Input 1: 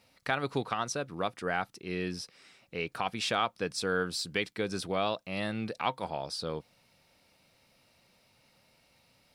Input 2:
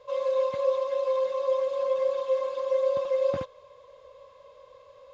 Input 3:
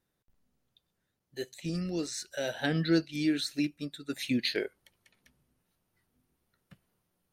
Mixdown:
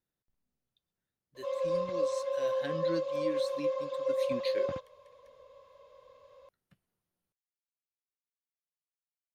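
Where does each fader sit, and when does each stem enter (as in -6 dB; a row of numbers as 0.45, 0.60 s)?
off, -5.5 dB, -10.0 dB; off, 1.35 s, 0.00 s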